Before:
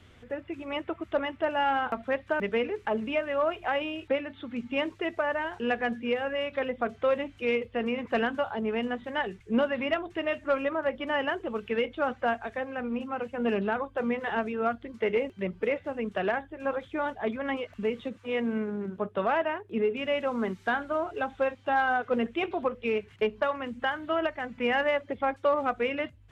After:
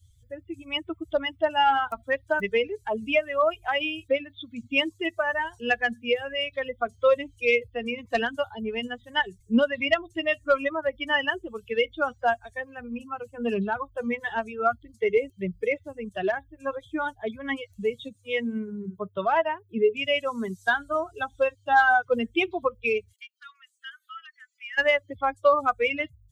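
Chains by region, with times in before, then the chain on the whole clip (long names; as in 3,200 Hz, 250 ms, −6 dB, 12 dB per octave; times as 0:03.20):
0:23.13–0:24.78: Butterworth high-pass 1,200 Hz 72 dB per octave + downward compressor 1.5 to 1, threshold −50 dBFS
whole clip: spectral dynamics exaggerated over time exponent 2; high-shelf EQ 2,300 Hz +10.5 dB; level +7 dB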